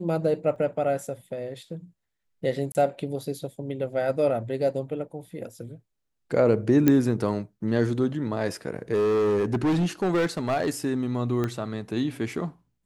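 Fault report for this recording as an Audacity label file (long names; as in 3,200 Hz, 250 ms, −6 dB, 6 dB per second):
0.560000	0.560000	drop-out 2.8 ms
2.720000	2.750000	drop-out 29 ms
6.880000	6.880000	click −7 dBFS
8.930000	10.700000	clipping −19.5 dBFS
11.440000	11.440000	click −15 dBFS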